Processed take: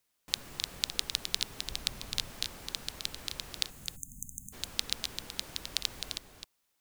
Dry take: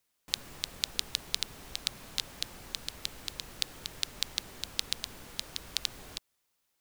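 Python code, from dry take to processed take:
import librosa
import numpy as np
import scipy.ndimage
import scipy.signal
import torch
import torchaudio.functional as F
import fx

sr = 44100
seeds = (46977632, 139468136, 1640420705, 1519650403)

p1 = fx.low_shelf(x, sr, hz=140.0, db=7.5, at=(1.67, 2.3))
p2 = fx.brickwall_bandstop(p1, sr, low_hz=270.0, high_hz=6200.0, at=(3.69, 4.52), fade=0.02)
y = p2 + fx.echo_single(p2, sr, ms=260, db=-7.0, dry=0)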